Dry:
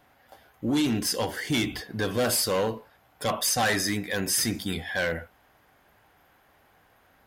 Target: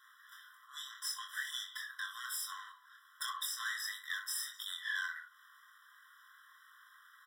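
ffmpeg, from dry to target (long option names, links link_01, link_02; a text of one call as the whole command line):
ffmpeg -i in.wav -af "aeval=exprs='if(lt(val(0),0),0.447*val(0),val(0))':channel_layout=same,highpass=300,acompressor=threshold=-41dB:ratio=6,aecho=1:1:23|64:0.596|0.251,afftfilt=real='re*eq(mod(floor(b*sr/1024/1000),2),1)':imag='im*eq(mod(floor(b*sr/1024/1000),2),1)':win_size=1024:overlap=0.75,volume=5.5dB" out.wav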